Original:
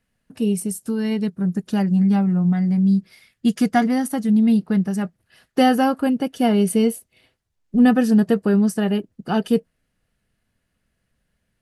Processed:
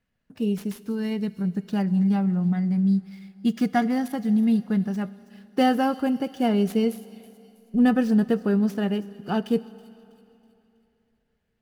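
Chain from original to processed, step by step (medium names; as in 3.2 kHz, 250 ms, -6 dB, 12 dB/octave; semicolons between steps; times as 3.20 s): median filter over 5 samples; feedback echo behind a high-pass 324 ms, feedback 43%, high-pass 4.2 kHz, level -15 dB; Schroeder reverb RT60 3 s, combs from 31 ms, DRR 18 dB; trim -4.5 dB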